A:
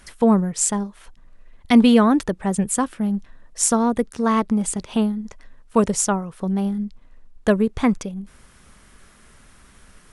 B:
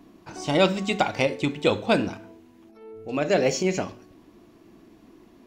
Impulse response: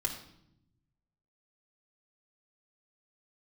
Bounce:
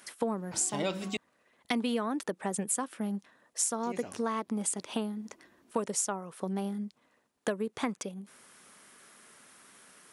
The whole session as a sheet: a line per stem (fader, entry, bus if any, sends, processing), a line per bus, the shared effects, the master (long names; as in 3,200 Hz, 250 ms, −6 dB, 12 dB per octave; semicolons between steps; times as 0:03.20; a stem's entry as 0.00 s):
−4.0 dB, 0.00 s, no send, high-pass filter 280 Hz 12 dB per octave
−0.5 dB, 0.25 s, muted 0:01.17–0:03.83, no send, automatic ducking −12 dB, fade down 1.90 s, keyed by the first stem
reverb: not used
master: high-pass filter 61 Hz; high-shelf EQ 9,500 Hz +7.5 dB; downward compressor 6 to 1, threshold −28 dBFS, peak gain reduction 12 dB